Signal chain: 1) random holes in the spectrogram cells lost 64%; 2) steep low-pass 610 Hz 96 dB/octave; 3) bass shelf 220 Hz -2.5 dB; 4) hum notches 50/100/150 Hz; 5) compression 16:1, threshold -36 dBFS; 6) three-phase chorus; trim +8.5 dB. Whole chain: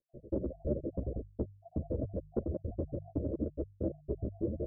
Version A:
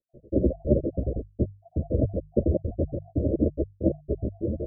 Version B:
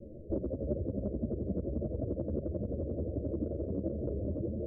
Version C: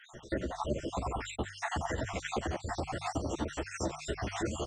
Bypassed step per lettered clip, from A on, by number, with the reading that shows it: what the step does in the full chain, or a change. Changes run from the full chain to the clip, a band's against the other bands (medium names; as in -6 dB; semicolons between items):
5, mean gain reduction 8.5 dB; 1, 1 kHz band -3.0 dB; 2, 1 kHz band +22.5 dB